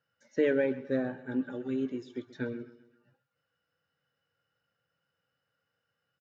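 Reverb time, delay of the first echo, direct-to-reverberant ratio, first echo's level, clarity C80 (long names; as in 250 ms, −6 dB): no reverb audible, 130 ms, no reverb audible, −17.0 dB, no reverb audible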